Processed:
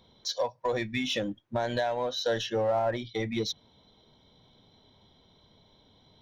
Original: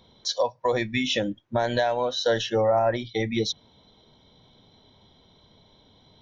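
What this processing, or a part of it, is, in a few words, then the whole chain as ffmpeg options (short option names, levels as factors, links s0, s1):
parallel distortion: -filter_complex "[0:a]asplit=2[s0][s1];[s1]asoftclip=type=hard:threshold=0.0422,volume=0.355[s2];[s0][s2]amix=inputs=2:normalize=0,volume=0.473"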